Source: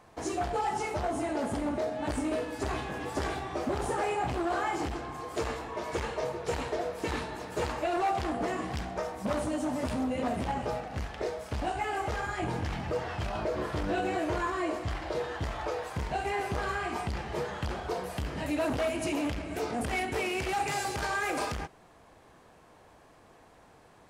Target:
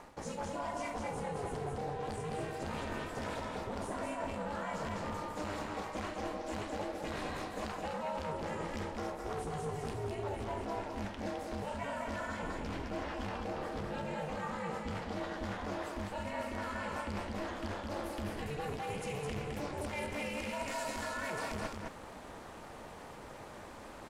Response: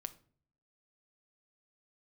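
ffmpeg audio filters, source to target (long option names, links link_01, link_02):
-af "areverse,acompressor=threshold=-44dB:ratio=16,areverse,aeval=exprs='val(0)*sin(2*PI*150*n/s)':channel_layout=same,aecho=1:1:211:0.631,volume=10dB"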